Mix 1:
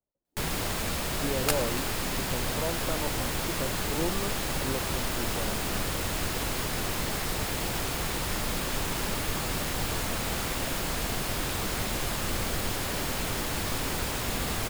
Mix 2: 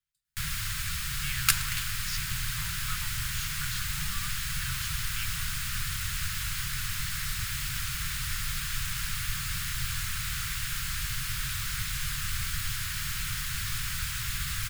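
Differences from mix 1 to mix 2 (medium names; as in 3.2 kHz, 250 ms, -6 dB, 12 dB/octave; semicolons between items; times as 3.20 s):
speech: remove Gaussian low-pass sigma 7.1 samples; second sound +6.0 dB; master: add Chebyshev band-stop 140–1400 Hz, order 3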